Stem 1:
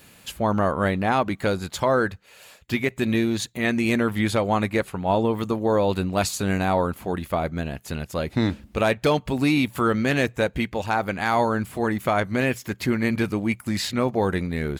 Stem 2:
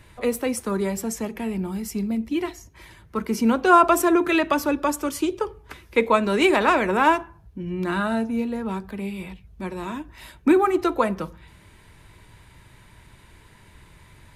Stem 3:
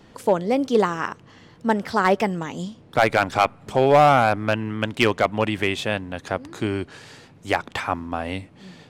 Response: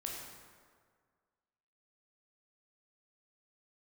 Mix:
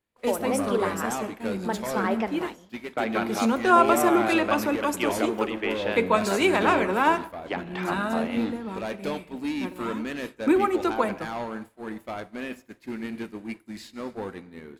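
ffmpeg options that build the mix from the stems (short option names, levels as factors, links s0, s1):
-filter_complex "[0:a]lowshelf=f=170:t=q:w=1.5:g=-9.5,asoftclip=type=tanh:threshold=0.133,volume=0.335,asplit=2[s0][s1];[s1]volume=0.501[s2];[1:a]lowshelf=f=110:g=-6.5,volume=0.596,asplit=2[s3][s4];[s4]volume=0.251[s5];[2:a]acrossover=split=220 4300:gain=0.0794 1 0.178[s6][s7][s8];[s6][s7][s8]amix=inputs=3:normalize=0,alimiter=limit=0.2:level=0:latency=1:release=486,volume=0.596,asplit=2[s9][s10];[s10]volume=0.447[s11];[3:a]atrim=start_sample=2205[s12];[s2][s5][s11]amix=inputs=3:normalize=0[s13];[s13][s12]afir=irnorm=-1:irlink=0[s14];[s0][s3][s9][s14]amix=inputs=4:normalize=0,agate=range=0.0224:threshold=0.0447:ratio=3:detection=peak"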